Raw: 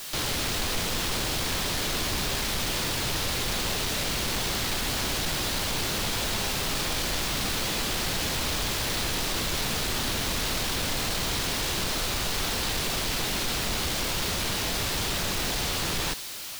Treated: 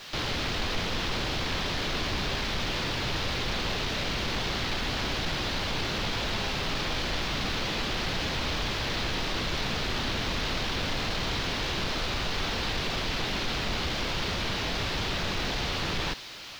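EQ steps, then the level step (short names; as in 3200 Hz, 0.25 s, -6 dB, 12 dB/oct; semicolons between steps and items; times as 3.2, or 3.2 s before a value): air absorption 250 m; high shelf 3700 Hz +10 dB; 0.0 dB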